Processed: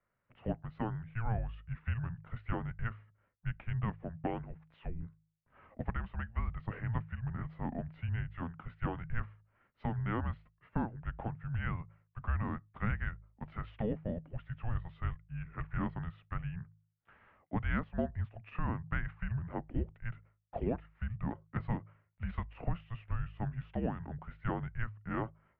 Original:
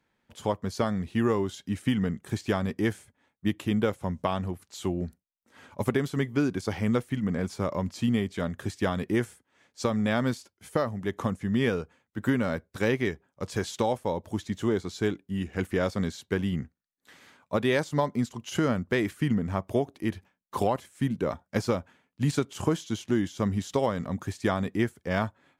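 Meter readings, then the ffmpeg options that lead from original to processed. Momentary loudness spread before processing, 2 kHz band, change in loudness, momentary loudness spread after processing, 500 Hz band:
6 LU, −9.5 dB, −10.0 dB, 8 LU, −16.0 dB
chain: -af "highpass=frequency=190:width_type=q:width=0.5412,highpass=frequency=190:width_type=q:width=1.307,lowpass=frequency=2700:width_type=q:width=0.5176,lowpass=frequency=2700:width_type=q:width=0.7071,lowpass=frequency=2700:width_type=q:width=1.932,afreqshift=-340,bandreject=frequency=52.73:width_type=h:width=4,bandreject=frequency=105.46:width_type=h:width=4,bandreject=frequency=158.19:width_type=h:width=4,volume=-7dB"

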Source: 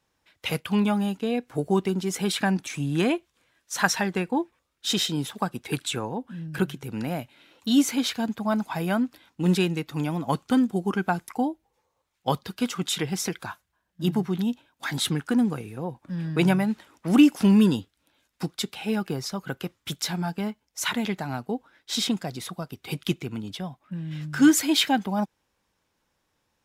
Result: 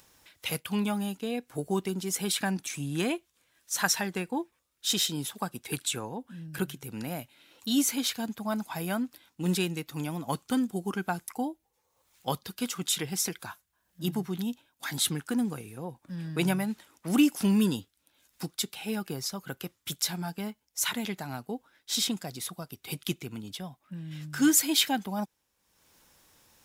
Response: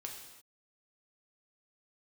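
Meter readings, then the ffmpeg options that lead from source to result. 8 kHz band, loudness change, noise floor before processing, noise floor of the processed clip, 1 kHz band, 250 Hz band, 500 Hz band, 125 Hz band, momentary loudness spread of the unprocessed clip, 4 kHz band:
+2.0 dB, −4.5 dB, −76 dBFS, −76 dBFS, −6.0 dB, −6.5 dB, −6.5 dB, −6.5 dB, 13 LU, −2.0 dB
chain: -af "crystalizer=i=2:c=0,acompressor=mode=upward:threshold=-41dB:ratio=2.5,volume=-6.5dB"

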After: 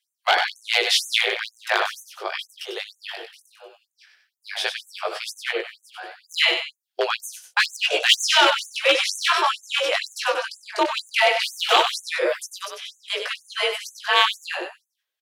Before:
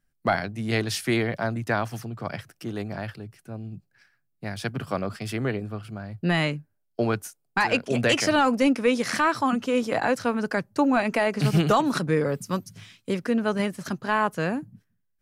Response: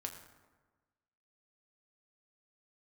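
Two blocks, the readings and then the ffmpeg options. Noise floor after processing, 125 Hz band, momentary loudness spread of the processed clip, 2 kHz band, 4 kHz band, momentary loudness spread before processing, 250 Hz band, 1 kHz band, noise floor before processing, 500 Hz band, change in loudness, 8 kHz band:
−82 dBFS, below −40 dB, 15 LU, +6.0 dB, +13.5 dB, 15 LU, −15.5 dB, +3.0 dB, −73 dBFS, −0.5 dB, +4.0 dB, +7.0 dB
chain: -filter_complex "[0:a]flanger=delay=16:depth=4.3:speed=0.16,afreqshift=49,aeval=exprs='0.133*(abs(mod(val(0)/0.133+3,4)-2)-1)':channel_layout=same,equalizer=frequency=3300:width_type=o:width=0.96:gain=13,asplit=2[link_01][link_02];[link_02]aecho=0:1:97|187:0.447|0.2[link_03];[link_01][link_03]amix=inputs=2:normalize=0,afftfilt=real='re*gte(b*sr/1024,320*pow(6200/320,0.5+0.5*sin(2*PI*2.1*pts/sr)))':imag='im*gte(b*sr/1024,320*pow(6200/320,0.5+0.5*sin(2*PI*2.1*pts/sr)))':win_size=1024:overlap=0.75,volume=6.5dB"

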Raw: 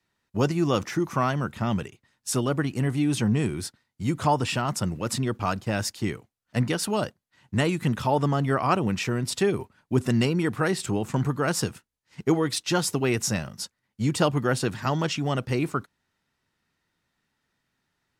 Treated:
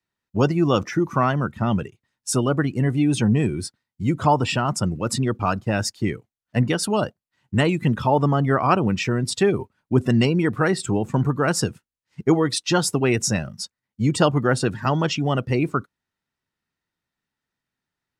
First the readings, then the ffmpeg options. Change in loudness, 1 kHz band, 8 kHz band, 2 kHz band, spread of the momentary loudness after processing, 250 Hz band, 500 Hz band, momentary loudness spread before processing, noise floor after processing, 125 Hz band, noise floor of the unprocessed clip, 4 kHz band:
+4.5 dB, +4.5 dB, +3.0 dB, +4.0 dB, 9 LU, +4.5 dB, +4.5 dB, 8 LU, below −85 dBFS, +4.5 dB, −80 dBFS, +3.0 dB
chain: -af "afftdn=noise_reduction=13:noise_floor=-37,volume=4.5dB"

